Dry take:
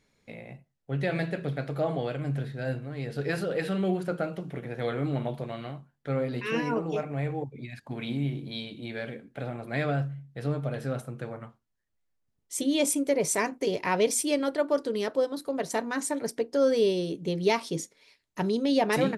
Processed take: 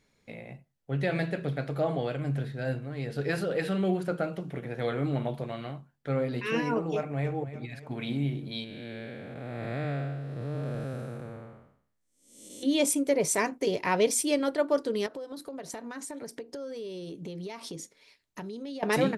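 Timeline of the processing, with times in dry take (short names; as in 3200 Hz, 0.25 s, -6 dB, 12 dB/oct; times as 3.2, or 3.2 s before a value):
6.95–7.36 echo throw 0.29 s, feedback 50%, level -13 dB
8.64–12.63 time blur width 0.38 s
15.06–18.83 compressor 12:1, threshold -35 dBFS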